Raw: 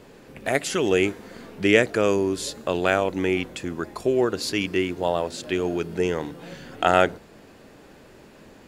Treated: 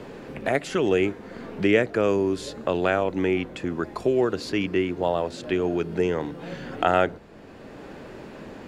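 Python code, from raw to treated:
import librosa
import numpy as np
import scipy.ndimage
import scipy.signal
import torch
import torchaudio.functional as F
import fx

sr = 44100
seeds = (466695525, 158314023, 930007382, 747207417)

y = fx.lowpass(x, sr, hz=2200.0, slope=6)
y = fx.band_squash(y, sr, depth_pct=40)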